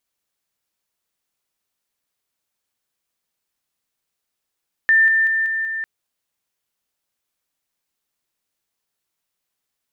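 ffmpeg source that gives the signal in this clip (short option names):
-f lavfi -i "aevalsrc='pow(10,(-10.5-3*floor(t/0.19))/20)*sin(2*PI*1790*t)':d=0.95:s=44100"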